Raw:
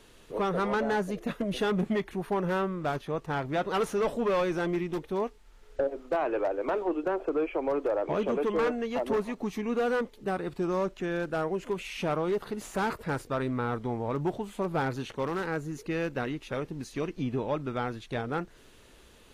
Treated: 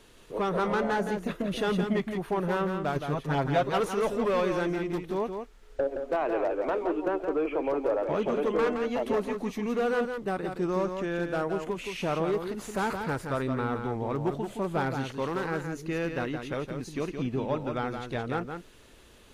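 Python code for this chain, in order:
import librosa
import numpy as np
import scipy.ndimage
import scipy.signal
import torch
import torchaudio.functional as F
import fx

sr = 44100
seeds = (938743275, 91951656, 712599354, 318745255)

p1 = fx.comb(x, sr, ms=7.4, depth=0.92, at=(2.95, 3.68))
y = p1 + fx.echo_single(p1, sr, ms=169, db=-6.5, dry=0)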